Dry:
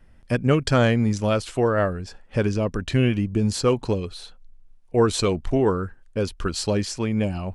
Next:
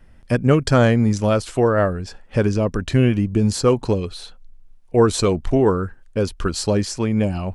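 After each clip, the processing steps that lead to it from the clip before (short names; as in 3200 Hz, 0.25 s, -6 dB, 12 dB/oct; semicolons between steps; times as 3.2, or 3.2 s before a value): dynamic EQ 2900 Hz, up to -5 dB, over -40 dBFS, Q 1.1; gain +4 dB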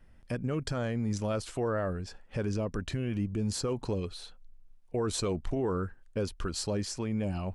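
limiter -14 dBFS, peak gain reduction 11.5 dB; gain -9 dB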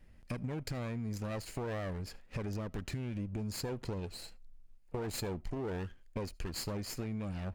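minimum comb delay 0.44 ms; compressor 5:1, threshold -35 dBFS, peak gain reduction 7.5 dB; reverb, pre-delay 35 ms, DRR 26.5 dB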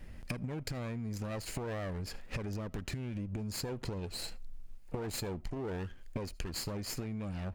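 compressor 10:1, threshold -46 dBFS, peak gain reduction 13 dB; gain +11 dB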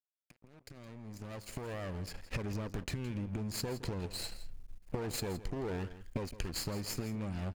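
opening faded in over 2.40 s; crossover distortion -51 dBFS; echo 0.166 s -15 dB; gain +2 dB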